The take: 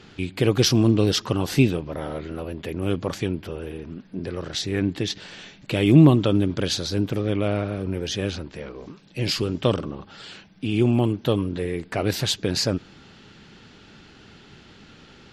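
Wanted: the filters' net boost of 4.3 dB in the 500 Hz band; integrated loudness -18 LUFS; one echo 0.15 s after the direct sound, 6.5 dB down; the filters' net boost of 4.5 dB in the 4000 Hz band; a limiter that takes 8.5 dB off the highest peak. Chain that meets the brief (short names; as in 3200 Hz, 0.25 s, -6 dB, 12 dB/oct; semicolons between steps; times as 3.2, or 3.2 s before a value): bell 500 Hz +5.5 dB; bell 4000 Hz +5.5 dB; limiter -10 dBFS; echo 0.15 s -6.5 dB; gain +4.5 dB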